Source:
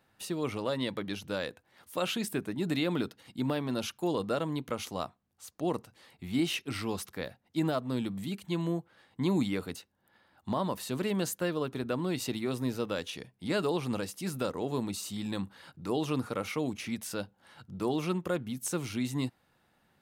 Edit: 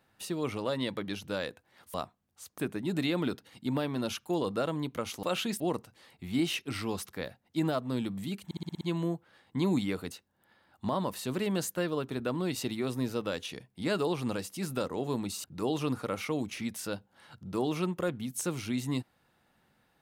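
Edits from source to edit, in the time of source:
1.94–2.31 s: swap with 4.96–5.60 s
8.45 s: stutter 0.06 s, 7 plays
15.08–15.71 s: delete

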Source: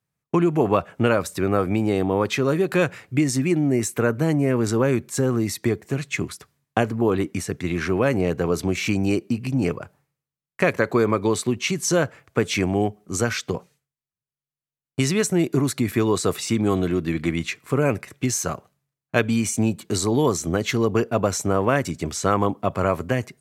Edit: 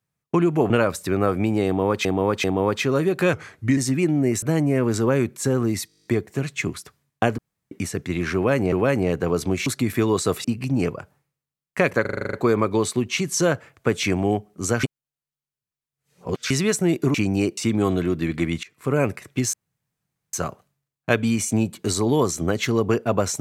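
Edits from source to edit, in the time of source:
0.70–1.01 s: delete
1.97–2.36 s: loop, 3 plays
2.86–3.25 s: speed 88%
3.90–4.15 s: delete
5.60 s: stutter 0.02 s, 10 plays
6.93–7.26 s: room tone
7.90–8.27 s: loop, 2 plays
8.84–9.27 s: swap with 15.65–16.43 s
10.84 s: stutter 0.04 s, 9 plays
13.34–15.01 s: reverse
17.49–17.82 s: fade in, from -23 dB
18.39 s: insert room tone 0.80 s

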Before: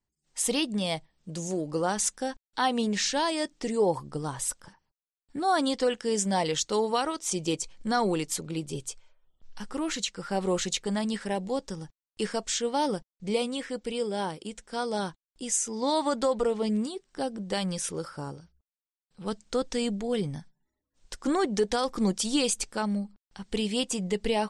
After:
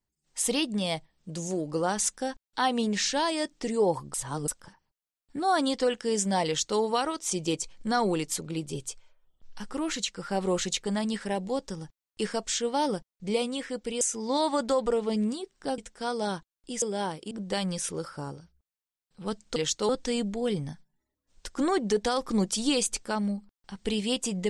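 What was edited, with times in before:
4.14–4.48 s: reverse
6.46–6.79 s: copy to 19.56 s
14.01–14.50 s: swap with 15.54–17.31 s

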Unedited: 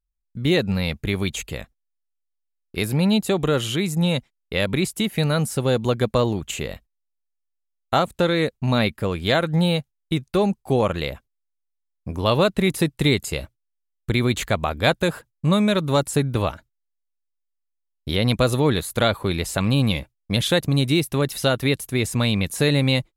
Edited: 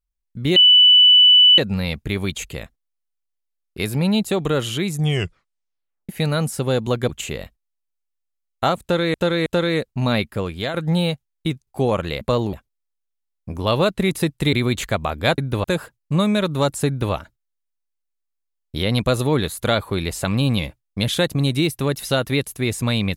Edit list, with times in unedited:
0.56 s: add tone 2.98 kHz -7.5 dBFS 1.02 s
3.89 s: tape stop 1.18 s
6.07–6.39 s: move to 11.12 s
8.12–8.44 s: loop, 3 plays
8.94–9.40 s: fade out equal-power, to -9.5 dB
10.33–10.58 s: delete
13.12–14.12 s: delete
16.20–16.46 s: copy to 14.97 s

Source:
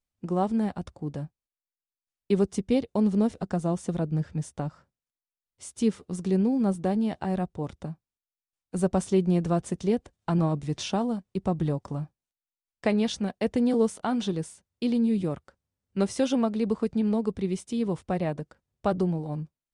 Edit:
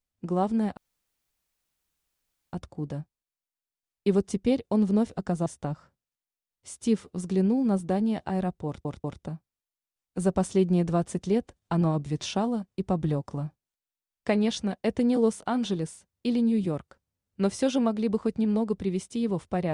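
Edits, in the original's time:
0.77 s: insert room tone 1.76 s
3.70–4.41 s: delete
7.61 s: stutter 0.19 s, 3 plays

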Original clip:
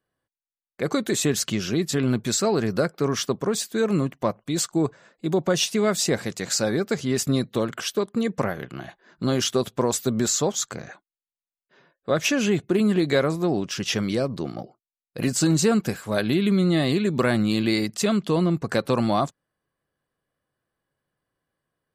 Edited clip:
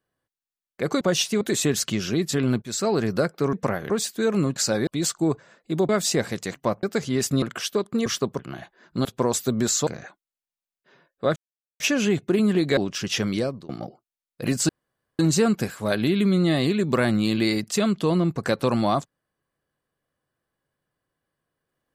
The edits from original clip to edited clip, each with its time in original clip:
2.22–2.60 s: fade in equal-power, from -19 dB
3.13–3.46 s: swap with 8.28–8.65 s
4.12–4.41 s: swap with 6.48–6.79 s
5.43–5.83 s: move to 1.01 s
7.38–7.64 s: delete
9.31–9.64 s: delete
10.46–10.72 s: delete
12.21 s: insert silence 0.44 s
13.18–13.53 s: delete
14.15–14.45 s: fade out, to -23 dB
15.45 s: insert room tone 0.50 s

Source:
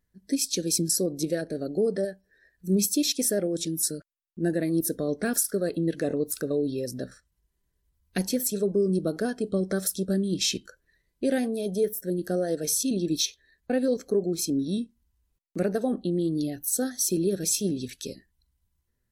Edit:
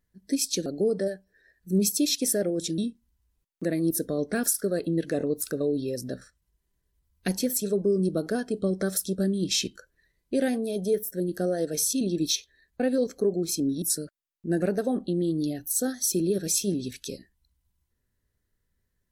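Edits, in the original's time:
0.66–1.63 s: delete
3.75–4.55 s: swap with 14.72–15.59 s

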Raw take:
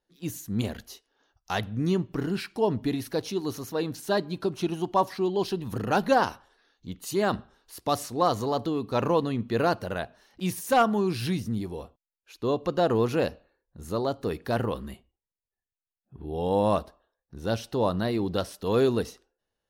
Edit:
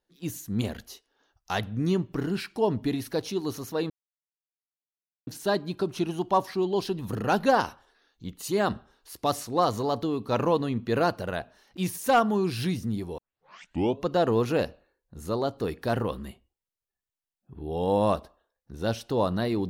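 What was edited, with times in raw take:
3.90 s: insert silence 1.37 s
11.81 s: tape start 0.84 s

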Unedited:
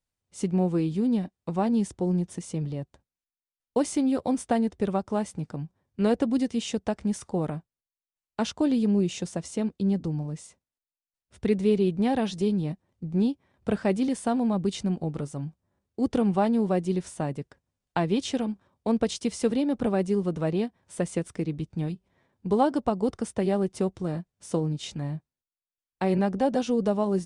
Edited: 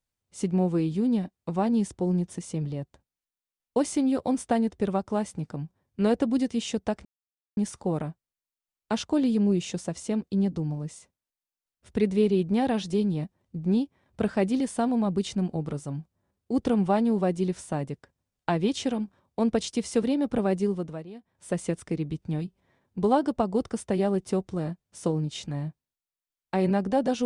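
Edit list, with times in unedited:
7.05 s: insert silence 0.52 s
20.11–21.05 s: dip -16.5 dB, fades 0.43 s

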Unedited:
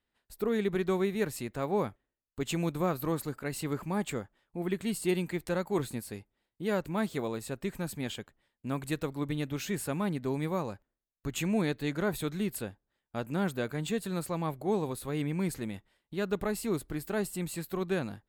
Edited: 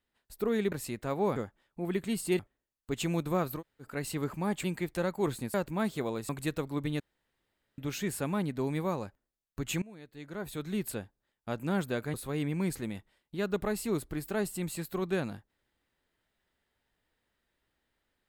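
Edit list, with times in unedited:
0.72–1.24 s: delete
3.07–3.33 s: room tone, crossfade 0.10 s
4.13–5.16 s: move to 1.88 s
6.06–6.72 s: delete
7.47–8.74 s: delete
9.45 s: insert room tone 0.78 s
11.49–12.49 s: fade in quadratic, from -22.5 dB
13.81–14.93 s: delete

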